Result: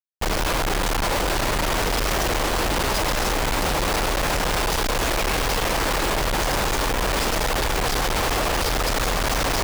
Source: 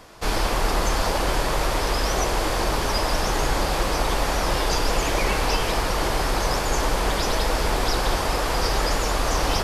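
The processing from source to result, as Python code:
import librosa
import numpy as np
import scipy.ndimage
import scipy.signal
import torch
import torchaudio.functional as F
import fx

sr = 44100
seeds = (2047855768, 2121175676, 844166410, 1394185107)

y = fx.echo_split(x, sr, split_hz=460.0, low_ms=313, high_ms=165, feedback_pct=52, wet_db=-14.0)
y = fx.schmitt(y, sr, flips_db=-33.0)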